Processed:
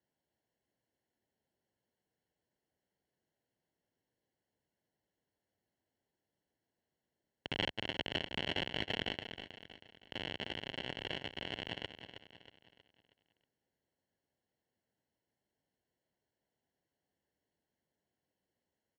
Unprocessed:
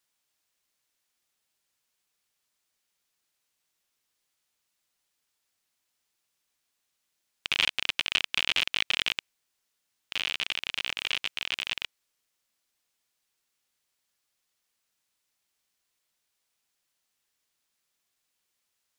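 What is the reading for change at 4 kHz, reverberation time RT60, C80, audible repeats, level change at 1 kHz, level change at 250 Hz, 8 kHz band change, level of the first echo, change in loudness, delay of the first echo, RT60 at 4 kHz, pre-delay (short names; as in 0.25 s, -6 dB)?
-11.0 dB, none, none, 4, -4.5 dB, +7.0 dB, -19.5 dB, -10.0 dB, -11.0 dB, 0.318 s, none, none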